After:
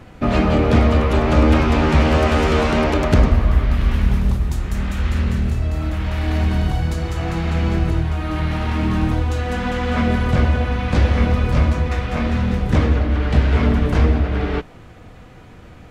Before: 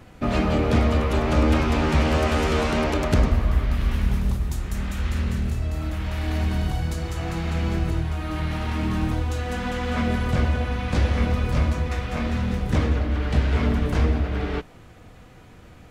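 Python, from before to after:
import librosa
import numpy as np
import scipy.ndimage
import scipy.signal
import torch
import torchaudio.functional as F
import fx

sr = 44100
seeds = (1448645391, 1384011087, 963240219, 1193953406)

y = fx.high_shelf(x, sr, hz=5700.0, db=-7.5)
y = F.gain(torch.from_numpy(y), 5.5).numpy()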